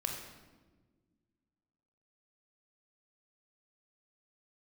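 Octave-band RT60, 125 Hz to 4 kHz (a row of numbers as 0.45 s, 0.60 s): 2.2 s, 2.3 s, 1.7 s, 1.1 s, 1.0 s, 0.90 s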